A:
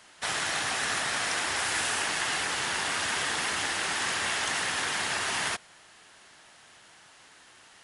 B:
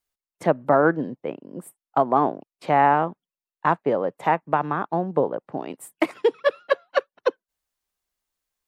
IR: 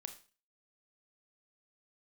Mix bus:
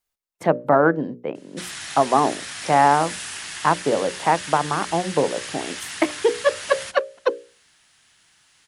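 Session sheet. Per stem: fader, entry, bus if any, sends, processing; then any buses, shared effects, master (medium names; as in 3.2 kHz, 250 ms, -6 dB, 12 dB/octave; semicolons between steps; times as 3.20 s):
-3.0 dB, 1.35 s, send -6.5 dB, peaking EQ 630 Hz -12 dB 2.6 oct
+2.0 dB, 0.00 s, no send, none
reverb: on, RT60 0.35 s, pre-delay 26 ms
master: hum notches 60/120/180/240/300/360/420/480/540/600 Hz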